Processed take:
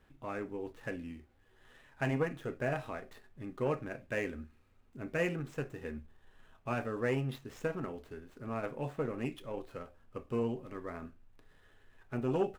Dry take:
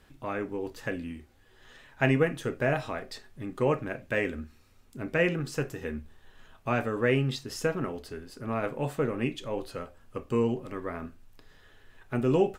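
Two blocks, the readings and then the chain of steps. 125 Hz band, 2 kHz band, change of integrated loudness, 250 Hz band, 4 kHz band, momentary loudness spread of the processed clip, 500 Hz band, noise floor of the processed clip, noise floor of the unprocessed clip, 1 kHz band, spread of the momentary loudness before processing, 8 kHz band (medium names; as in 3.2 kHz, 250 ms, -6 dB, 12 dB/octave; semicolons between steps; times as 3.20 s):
-7.0 dB, -8.0 dB, -7.5 dB, -7.5 dB, -11.5 dB, 14 LU, -7.0 dB, -65 dBFS, -59 dBFS, -6.5 dB, 15 LU, -11.5 dB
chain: median filter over 9 samples; transformer saturation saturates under 450 Hz; trim -6 dB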